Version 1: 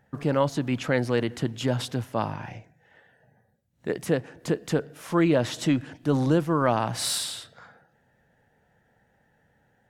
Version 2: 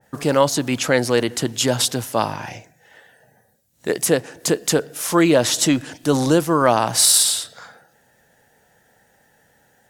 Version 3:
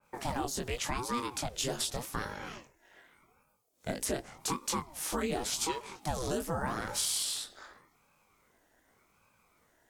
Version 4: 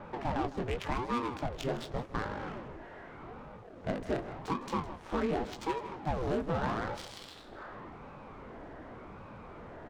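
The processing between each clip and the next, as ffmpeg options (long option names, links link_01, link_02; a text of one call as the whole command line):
ffmpeg -i in.wav -af "bass=frequency=250:gain=-7,treble=frequency=4000:gain=14,alimiter=level_in=8dB:limit=-1dB:release=50:level=0:latency=1,adynamicequalizer=threshold=0.0355:dfrequency=1700:dqfactor=0.7:tfrequency=1700:tqfactor=0.7:attack=5:release=100:ratio=0.375:range=1.5:mode=cutabove:tftype=highshelf" out.wav
ffmpeg -i in.wav -filter_complex "[0:a]flanger=delay=19.5:depth=3.1:speed=2.8,acrossover=split=340|5700[link_01][link_02][link_03];[link_01]acompressor=threshold=-31dB:ratio=4[link_04];[link_02]acompressor=threshold=-27dB:ratio=4[link_05];[link_03]acompressor=threshold=-27dB:ratio=4[link_06];[link_04][link_05][link_06]amix=inputs=3:normalize=0,aeval=exprs='val(0)*sin(2*PI*410*n/s+410*0.75/0.86*sin(2*PI*0.86*n/s))':channel_layout=same,volume=-4.5dB" out.wav
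ffmpeg -i in.wav -af "aeval=exprs='val(0)+0.5*0.0168*sgn(val(0))':channel_layout=same,adynamicsmooth=sensitivity=3:basefreq=660,aecho=1:1:158:0.168" out.wav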